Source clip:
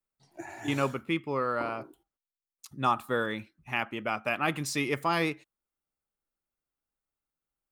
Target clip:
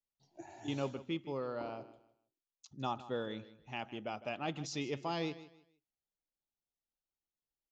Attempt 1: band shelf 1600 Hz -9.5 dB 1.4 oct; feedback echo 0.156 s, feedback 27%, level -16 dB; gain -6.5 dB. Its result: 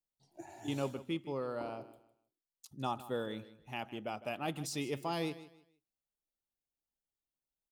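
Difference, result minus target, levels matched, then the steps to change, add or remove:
8000 Hz band +3.0 dB
add first: elliptic low-pass 6700 Hz, stop band 40 dB

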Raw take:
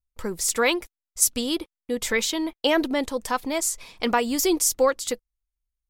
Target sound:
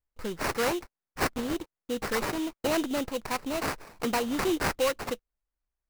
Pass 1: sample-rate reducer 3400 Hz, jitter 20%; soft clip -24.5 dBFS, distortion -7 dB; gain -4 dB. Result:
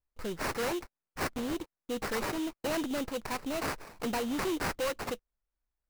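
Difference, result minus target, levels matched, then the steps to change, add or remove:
soft clip: distortion +9 dB
change: soft clip -15 dBFS, distortion -16 dB

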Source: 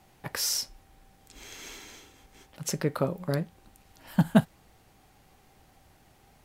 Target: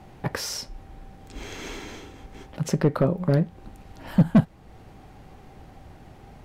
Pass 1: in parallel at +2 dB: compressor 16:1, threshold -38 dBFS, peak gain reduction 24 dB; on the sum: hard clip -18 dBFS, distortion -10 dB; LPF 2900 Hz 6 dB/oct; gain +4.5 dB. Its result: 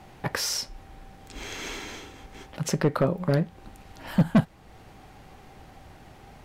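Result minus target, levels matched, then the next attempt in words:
1000 Hz band +3.5 dB
in parallel at +2 dB: compressor 16:1, threshold -38 dBFS, peak gain reduction 24 dB; on the sum: hard clip -18 dBFS, distortion -10 dB; LPF 2900 Hz 6 dB/oct; tilt shelf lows +3.5 dB, about 710 Hz; gain +4.5 dB

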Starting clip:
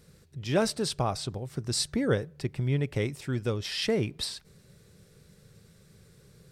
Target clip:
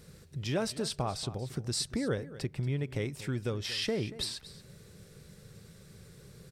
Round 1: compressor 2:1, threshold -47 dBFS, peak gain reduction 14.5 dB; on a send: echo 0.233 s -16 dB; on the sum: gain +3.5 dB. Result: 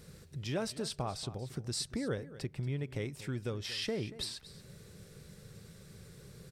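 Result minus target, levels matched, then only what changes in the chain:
compressor: peak gain reduction +3.5 dB
change: compressor 2:1, threshold -39.5 dBFS, peak gain reduction 11 dB

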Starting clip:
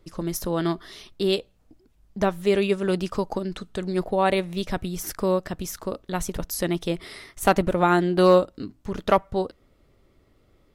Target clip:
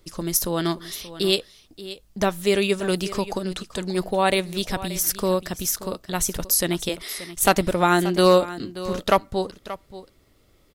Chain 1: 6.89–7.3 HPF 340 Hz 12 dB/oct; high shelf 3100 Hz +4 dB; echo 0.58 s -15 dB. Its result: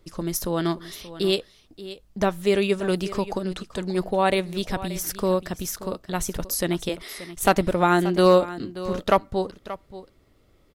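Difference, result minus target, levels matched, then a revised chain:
8000 Hz band -5.5 dB
6.89–7.3 HPF 340 Hz 12 dB/oct; high shelf 3100 Hz +12 dB; echo 0.58 s -15 dB

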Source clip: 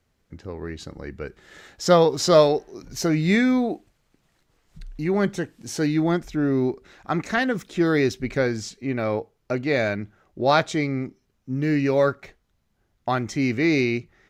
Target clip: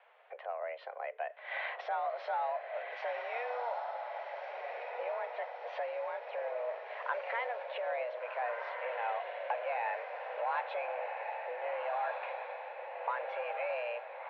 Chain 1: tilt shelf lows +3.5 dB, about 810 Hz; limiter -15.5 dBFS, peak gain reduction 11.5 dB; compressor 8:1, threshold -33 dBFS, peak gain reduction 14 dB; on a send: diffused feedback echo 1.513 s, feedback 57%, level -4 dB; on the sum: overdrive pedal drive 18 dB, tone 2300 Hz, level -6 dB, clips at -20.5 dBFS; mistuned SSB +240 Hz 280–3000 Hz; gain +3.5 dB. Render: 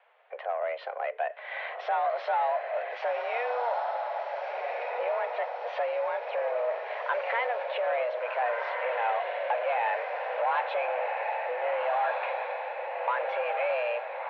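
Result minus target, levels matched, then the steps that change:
compressor: peak gain reduction -9.5 dB
change: compressor 8:1, threshold -44 dBFS, peak gain reduction 23.5 dB

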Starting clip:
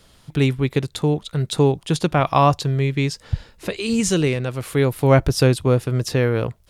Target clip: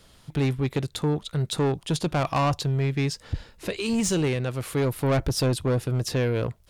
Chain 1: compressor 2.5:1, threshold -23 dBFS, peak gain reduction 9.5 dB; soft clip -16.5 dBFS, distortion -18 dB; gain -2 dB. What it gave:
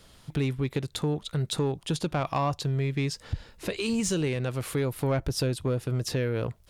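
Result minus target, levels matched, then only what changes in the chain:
compressor: peak gain reduction +9.5 dB
remove: compressor 2.5:1, threshold -23 dBFS, peak gain reduction 9.5 dB

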